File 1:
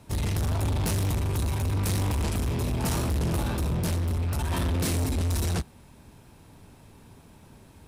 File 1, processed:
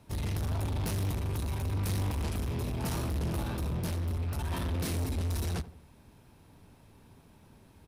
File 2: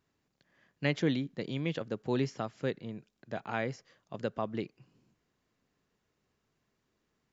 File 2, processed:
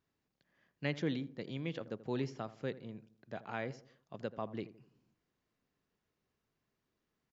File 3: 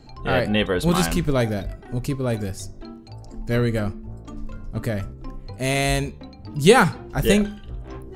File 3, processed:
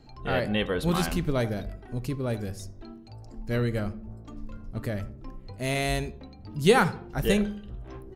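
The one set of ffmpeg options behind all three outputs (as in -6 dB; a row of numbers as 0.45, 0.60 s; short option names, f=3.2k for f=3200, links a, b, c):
-filter_complex "[0:a]equalizer=f=7.7k:w=2.2:g=-4.5,asplit=2[a][b];[b]adelay=82,lowpass=f=1.1k:p=1,volume=-15dB,asplit=2[c][d];[d]adelay=82,lowpass=f=1.1k:p=1,volume=0.45,asplit=2[e][f];[f]adelay=82,lowpass=f=1.1k:p=1,volume=0.45,asplit=2[g][h];[h]adelay=82,lowpass=f=1.1k:p=1,volume=0.45[i];[c][e][g][i]amix=inputs=4:normalize=0[j];[a][j]amix=inputs=2:normalize=0,volume=-6dB"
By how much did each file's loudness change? -5.5, -6.0, -6.0 LU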